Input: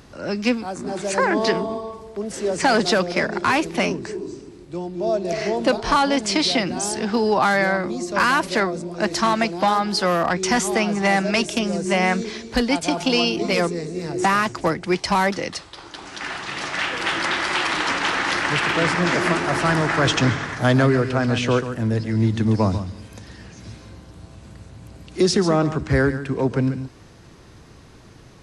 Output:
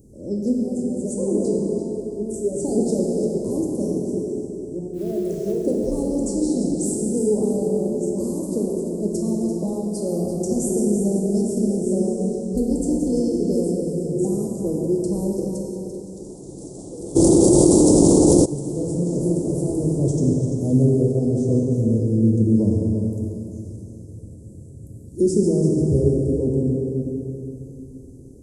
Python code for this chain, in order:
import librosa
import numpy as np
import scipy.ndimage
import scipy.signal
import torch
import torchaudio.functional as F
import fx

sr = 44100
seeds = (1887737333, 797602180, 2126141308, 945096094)

p1 = scipy.signal.sosfilt(scipy.signal.ellip(3, 1.0, 70, [450.0, 7900.0], 'bandstop', fs=sr, output='sos'), x)
p2 = fx.mod_noise(p1, sr, seeds[0], snr_db=26, at=(4.93, 5.52))
p3 = p2 + fx.echo_single(p2, sr, ms=341, db=-10.5, dry=0)
p4 = fx.rev_plate(p3, sr, seeds[1], rt60_s=3.1, hf_ratio=0.75, predelay_ms=0, drr_db=-2.0)
p5 = fx.env_flatten(p4, sr, amount_pct=100, at=(17.15, 18.44), fade=0.02)
y = p5 * 10.0 ** (-1.5 / 20.0)